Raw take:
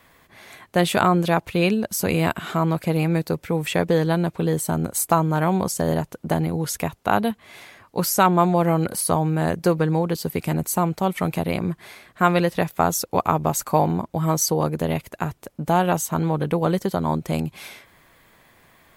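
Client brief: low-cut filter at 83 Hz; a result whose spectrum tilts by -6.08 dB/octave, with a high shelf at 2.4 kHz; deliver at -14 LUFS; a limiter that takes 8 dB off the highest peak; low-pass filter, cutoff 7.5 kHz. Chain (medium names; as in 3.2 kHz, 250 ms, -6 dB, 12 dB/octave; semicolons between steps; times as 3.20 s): high-pass 83 Hz; low-pass 7.5 kHz; treble shelf 2.4 kHz -7.5 dB; trim +11 dB; peak limiter -1 dBFS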